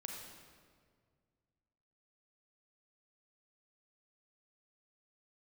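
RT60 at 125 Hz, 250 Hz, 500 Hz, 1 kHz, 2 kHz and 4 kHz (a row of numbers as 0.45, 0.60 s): 2.7, 2.3, 2.1, 1.7, 1.5, 1.3 s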